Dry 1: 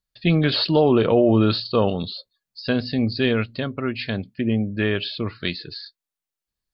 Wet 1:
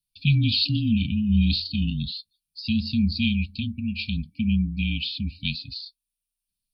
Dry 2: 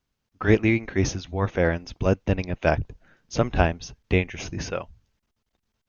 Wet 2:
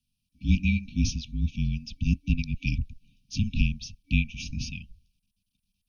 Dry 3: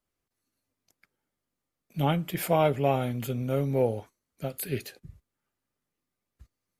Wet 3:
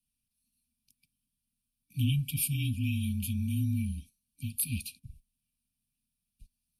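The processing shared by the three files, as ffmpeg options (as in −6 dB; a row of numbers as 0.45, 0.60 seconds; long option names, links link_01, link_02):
-af "afreqshift=-29,superequalizer=6b=0.631:8b=0.251:15b=0.562:16b=2.51,afftfilt=real='re*(1-between(b*sr/4096,290,2300))':imag='im*(1-between(b*sr/4096,290,2300))':win_size=4096:overlap=0.75"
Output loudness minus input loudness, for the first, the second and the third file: −3.5, −4.0, −3.5 LU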